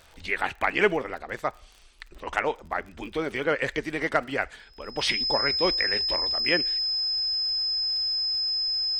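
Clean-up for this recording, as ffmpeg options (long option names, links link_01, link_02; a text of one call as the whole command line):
ffmpeg -i in.wav -af "adeclick=threshold=4,bandreject=frequency=5100:width=30" out.wav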